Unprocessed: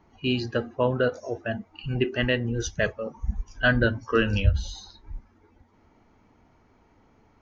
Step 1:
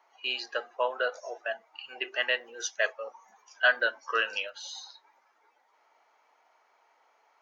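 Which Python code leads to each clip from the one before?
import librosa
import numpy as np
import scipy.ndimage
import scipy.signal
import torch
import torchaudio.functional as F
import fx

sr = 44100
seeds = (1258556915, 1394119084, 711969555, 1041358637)

y = scipy.signal.sosfilt(scipy.signal.butter(4, 620.0, 'highpass', fs=sr, output='sos'), x)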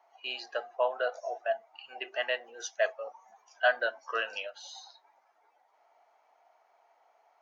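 y = fx.peak_eq(x, sr, hz=700.0, db=12.5, octaves=0.49)
y = y * 10.0 ** (-5.5 / 20.0)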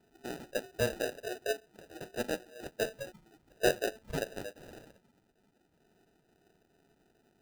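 y = fx.sample_hold(x, sr, seeds[0], rate_hz=1100.0, jitter_pct=0)
y = y * 10.0 ** (-3.0 / 20.0)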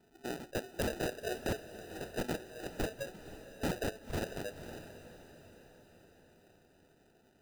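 y = (np.mod(10.0 ** (28.5 / 20.0) * x + 1.0, 2.0) - 1.0) / 10.0 ** (28.5 / 20.0)
y = fx.echo_diffused(y, sr, ms=515, feedback_pct=56, wet_db=-13.0)
y = y * 10.0 ** (1.0 / 20.0)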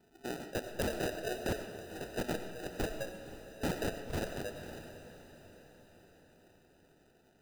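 y = fx.rev_freeverb(x, sr, rt60_s=0.91, hf_ratio=0.7, predelay_ms=55, drr_db=8.0)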